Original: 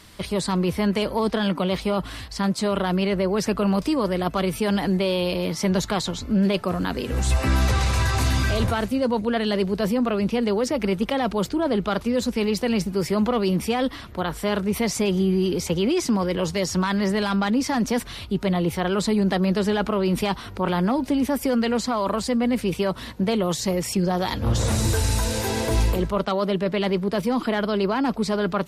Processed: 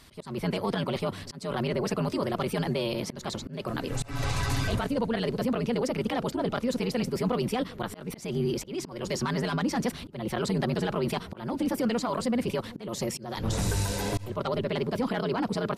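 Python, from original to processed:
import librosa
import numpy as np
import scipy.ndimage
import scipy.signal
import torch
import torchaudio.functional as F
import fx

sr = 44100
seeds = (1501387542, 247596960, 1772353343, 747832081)

y = fx.stretch_grains(x, sr, factor=0.55, grain_ms=20.0)
y = fx.echo_wet_lowpass(y, sr, ms=387, feedback_pct=46, hz=520.0, wet_db=-17.5)
y = fx.auto_swell(y, sr, attack_ms=251.0)
y = y * librosa.db_to_amplitude(-4.5)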